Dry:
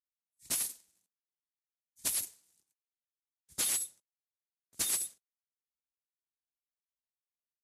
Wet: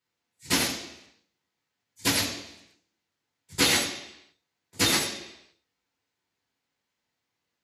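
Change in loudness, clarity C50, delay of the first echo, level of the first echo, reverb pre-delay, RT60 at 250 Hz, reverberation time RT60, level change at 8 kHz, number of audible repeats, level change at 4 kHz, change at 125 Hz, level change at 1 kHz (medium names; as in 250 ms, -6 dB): +8.0 dB, 5.0 dB, no echo, no echo, 3 ms, 0.85 s, 0.85 s, +3.5 dB, no echo, +15.5 dB, +23.0 dB, +19.5 dB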